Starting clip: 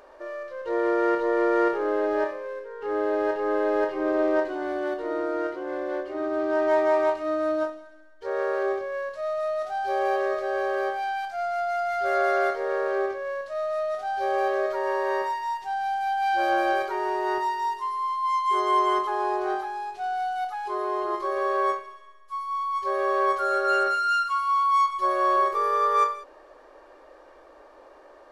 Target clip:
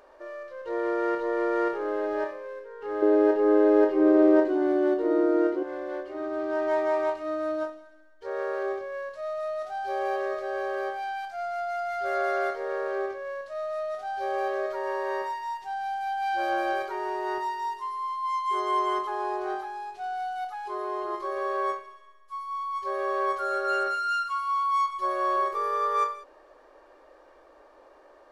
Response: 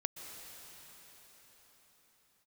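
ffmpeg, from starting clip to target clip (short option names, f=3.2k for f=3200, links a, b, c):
-filter_complex "[0:a]asettb=1/sr,asplit=3[a][b][c];[a]atrim=end=3.024[d];[b]atrim=start=3.02:end=5.63,asetpts=PTS-STARTPTS,afade=t=in:d=0.004:c=qsin,afade=t=out:st=2.606:d=0.004:c=qsin,equalizer=f=320:w=0.94:g=12.5[e];[c]atrim=start=5.626[f];[d][e]acrossfade=d=0.004:c1=hsin:c2=qsin[g];[g][f]acrossfade=d=0.004:c1=qsin:c2=hsin,volume=-4dB"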